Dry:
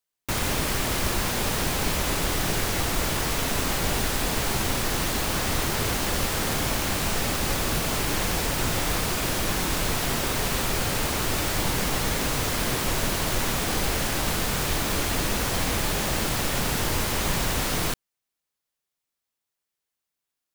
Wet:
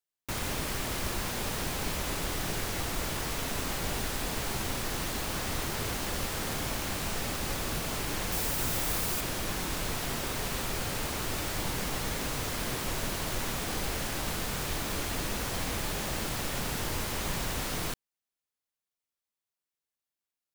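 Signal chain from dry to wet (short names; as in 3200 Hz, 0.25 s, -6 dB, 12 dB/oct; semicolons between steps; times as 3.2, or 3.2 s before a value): 8.32–9.21 high shelf 9000 Hz +9.5 dB; gain -7.5 dB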